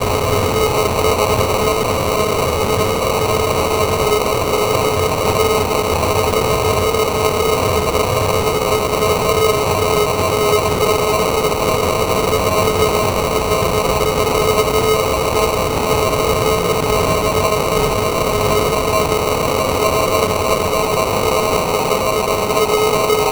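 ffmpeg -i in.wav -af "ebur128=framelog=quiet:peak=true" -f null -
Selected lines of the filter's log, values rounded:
Integrated loudness:
  I:         -15.4 LUFS
  Threshold: -25.4 LUFS
Loudness range:
  LRA:         0.7 LU
  Threshold: -35.4 LUFS
  LRA low:   -15.7 LUFS
  LRA high:  -15.1 LUFS
True peak:
  Peak:       -2.5 dBFS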